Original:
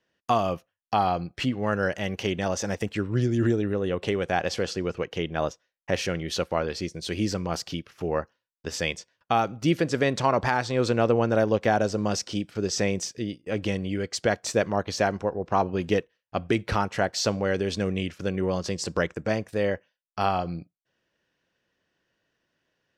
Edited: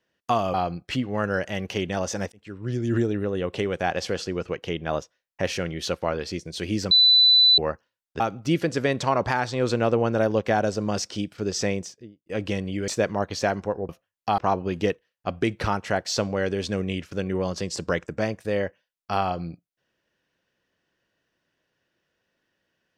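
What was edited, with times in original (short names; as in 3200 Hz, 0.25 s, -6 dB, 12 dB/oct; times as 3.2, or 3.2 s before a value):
0.54–1.03 move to 15.46
2.81–3.45 fade in
7.4–8.07 bleep 3990 Hz -12.5 dBFS
8.69–9.37 cut
12.8–13.43 studio fade out
14.05–14.45 cut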